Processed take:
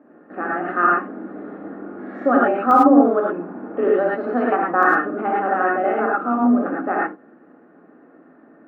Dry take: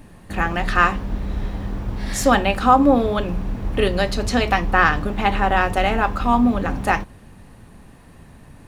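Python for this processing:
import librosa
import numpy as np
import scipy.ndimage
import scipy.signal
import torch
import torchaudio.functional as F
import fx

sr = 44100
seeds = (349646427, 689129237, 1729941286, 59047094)

y = scipy.signal.sosfilt(scipy.signal.cheby1(3, 1.0, [270.0, 1400.0], 'bandpass', fs=sr, output='sos'), x)
y = fx.peak_eq(y, sr, hz=950.0, db=fx.steps((0.0, -14.0), (2.71, -7.5), (4.83, -14.5)), octaves=0.34)
y = fx.rev_gated(y, sr, seeds[0], gate_ms=130, shape='rising', drr_db=-4.0)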